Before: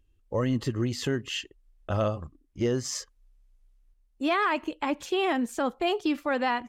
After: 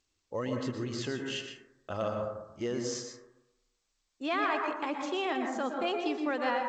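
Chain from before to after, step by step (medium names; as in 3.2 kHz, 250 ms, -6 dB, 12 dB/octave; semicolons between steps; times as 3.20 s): high-pass 300 Hz 6 dB/octave; plate-style reverb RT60 0.91 s, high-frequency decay 0.25×, pre-delay 105 ms, DRR 2.5 dB; trim -5 dB; G.722 64 kbps 16 kHz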